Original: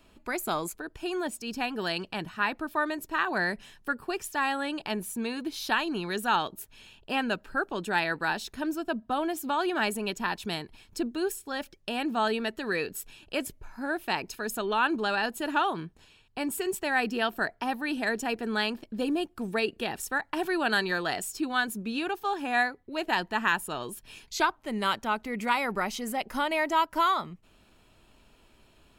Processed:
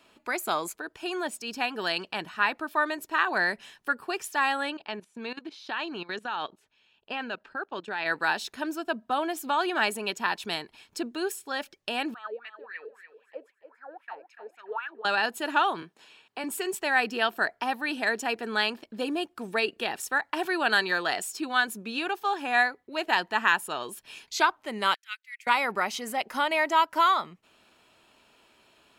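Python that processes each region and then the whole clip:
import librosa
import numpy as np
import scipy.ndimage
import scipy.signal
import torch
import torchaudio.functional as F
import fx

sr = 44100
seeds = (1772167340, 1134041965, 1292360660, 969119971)

y = fx.chain(x, sr, fx.lowpass(hz=4700.0, slope=12),
    fx.level_steps(step_db=17), at=(4.7, 8.06))
y = fx.chain(y, sr, fx.wah_lfo(hz=3.8, low_hz=440.0, high_hz=2300.0, q=10.0),
    fx.echo_feedback(ms=289, feedback_pct=27, wet_db=-11.0), at=(12.14, 15.05))
y = fx.chain(y, sr, fx.highpass(hz=190.0, slope=12),
    fx.band_squash(depth_pct=40), at=(15.82, 16.44))
y = fx.chain(y, sr, fx.steep_highpass(hz=1700.0, slope=36),
    fx.upward_expand(threshold_db=-49.0, expansion=2.5), at=(24.94, 25.47))
y = fx.highpass(y, sr, hz=580.0, slope=6)
y = fx.high_shelf(y, sr, hz=8400.0, db=-6.5)
y = y * librosa.db_to_amplitude(4.0)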